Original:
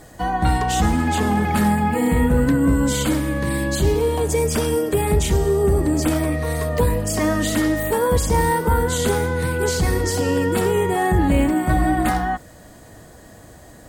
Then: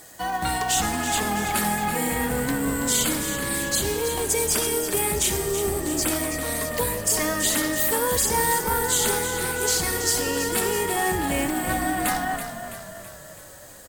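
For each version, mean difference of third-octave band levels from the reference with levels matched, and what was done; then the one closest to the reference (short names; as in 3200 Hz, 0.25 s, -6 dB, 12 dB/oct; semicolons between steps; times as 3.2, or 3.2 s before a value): 7.0 dB: tilt +3 dB/oct; short-mantissa float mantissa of 2-bit; on a send: frequency-shifting echo 0.329 s, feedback 56%, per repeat -40 Hz, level -9.5 dB; on the sum: gain -3.5 dB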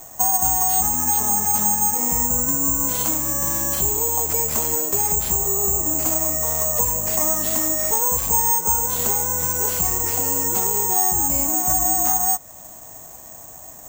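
9.5 dB: band shelf 870 Hz +10.5 dB 1.1 oct; careless resampling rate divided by 6×, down none, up zero stuff; compressor 2.5:1, threshold -8 dBFS, peak gain reduction 8 dB; gain -7.5 dB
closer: first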